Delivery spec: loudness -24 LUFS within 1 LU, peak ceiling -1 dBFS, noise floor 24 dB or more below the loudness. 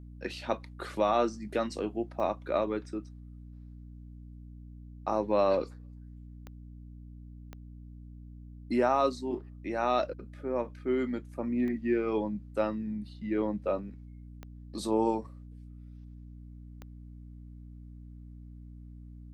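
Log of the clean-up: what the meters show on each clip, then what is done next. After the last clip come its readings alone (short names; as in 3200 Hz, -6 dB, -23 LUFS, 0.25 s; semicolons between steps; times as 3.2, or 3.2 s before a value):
clicks 6; hum 60 Hz; harmonics up to 300 Hz; hum level -45 dBFS; loudness -31.5 LUFS; peak -14.0 dBFS; loudness target -24.0 LUFS
-> de-click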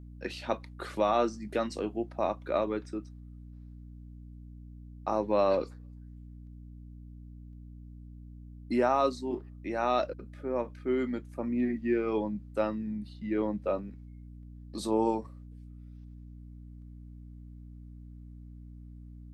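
clicks 0; hum 60 Hz; harmonics up to 300 Hz; hum level -45 dBFS
-> de-hum 60 Hz, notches 5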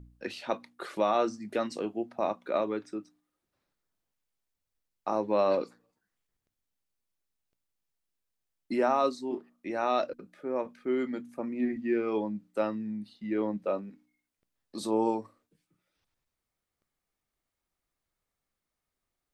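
hum none; loudness -31.5 LUFS; peak -14.5 dBFS; loudness target -24.0 LUFS
-> gain +7.5 dB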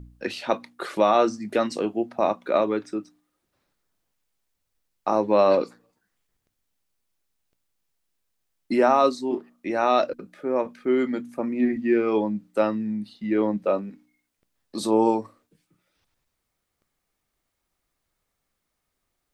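loudness -24.0 LUFS; peak -7.0 dBFS; noise floor -79 dBFS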